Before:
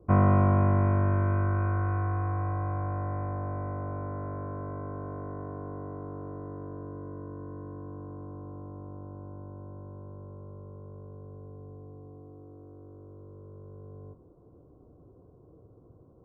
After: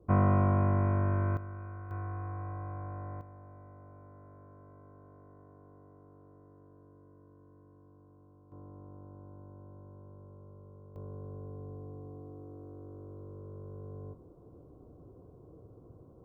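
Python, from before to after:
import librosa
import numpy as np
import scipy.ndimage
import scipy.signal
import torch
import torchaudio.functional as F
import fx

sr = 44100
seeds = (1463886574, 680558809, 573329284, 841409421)

y = fx.gain(x, sr, db=fx.steps((0.0, -4.0), (1.37, -15.5), (1.91, -9.0), (3.21, -18.0), (8.52, -7.5), (10.96, 1.5)))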